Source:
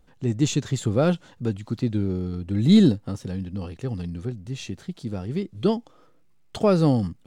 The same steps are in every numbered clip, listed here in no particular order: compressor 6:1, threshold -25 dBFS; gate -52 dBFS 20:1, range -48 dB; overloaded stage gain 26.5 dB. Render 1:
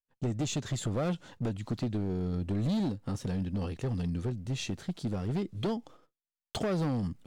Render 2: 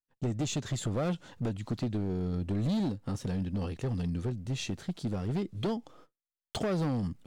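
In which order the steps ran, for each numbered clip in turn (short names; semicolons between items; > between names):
compressor > overloaded stage > gate; gate > compressor > overloaded stage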